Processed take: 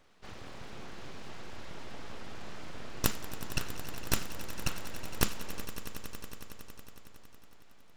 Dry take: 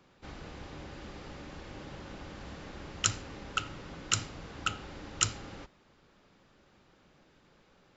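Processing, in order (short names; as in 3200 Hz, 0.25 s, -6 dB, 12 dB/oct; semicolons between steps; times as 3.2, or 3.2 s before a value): full-wave rectifier; swelling echo 92 ms, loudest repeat 5, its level -16 dB; gain +1 dB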